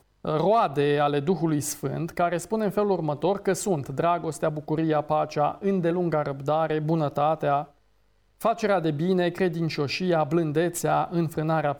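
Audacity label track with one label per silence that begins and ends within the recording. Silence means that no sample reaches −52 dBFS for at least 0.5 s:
7.750000	8.400000	silence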